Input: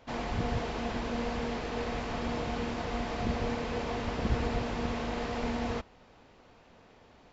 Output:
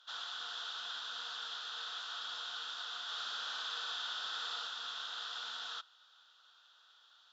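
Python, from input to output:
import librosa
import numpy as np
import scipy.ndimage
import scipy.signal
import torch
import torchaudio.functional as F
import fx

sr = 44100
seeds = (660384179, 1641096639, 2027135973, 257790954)

y = fx.double_bandpass(x, sr, hz=2200.0, octaves=1.3)
y = np.diff(y, prepend=0.0)
y = fx.room_flutter(y, sr, wall_m=10.0, rt60_s=1.0, at=(3.03, 4.67))
y = y * librosa.db_to_amplitude(17.5)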